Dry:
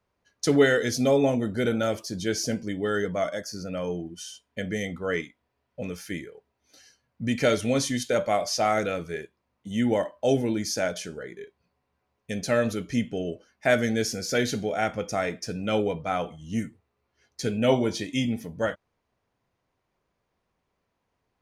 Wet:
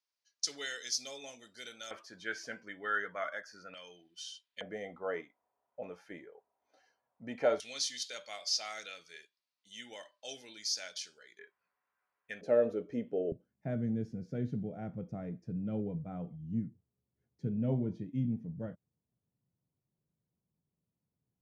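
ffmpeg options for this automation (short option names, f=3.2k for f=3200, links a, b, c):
-af "asetnsamples=n=441:p=0,asendcmd='1.91 bandpass f 1500;3.74 bandpass f 3800;4.61 bandpass f 790;7.6 bandpass f 4500;11.39 bandpass f 1500;12.41 bandpass f 480;13.32 bandpass f 150',bandpass=f=5.2k:t=q:w=2.2:csg=0"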